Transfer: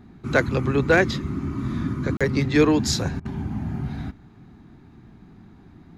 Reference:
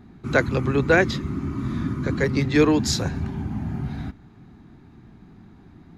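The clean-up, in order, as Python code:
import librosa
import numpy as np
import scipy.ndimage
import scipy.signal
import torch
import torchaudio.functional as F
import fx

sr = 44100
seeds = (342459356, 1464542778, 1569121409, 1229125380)

y = fx.fix_declip(x, sr, threshold_db=-7.5)
y = fx.fix_interpolate(y, sr, at_s=(2.17,), length_ms=36.0)
y = fx.fix_interpolate(y, sr, at_s=(3.2,), length_ms=50.0)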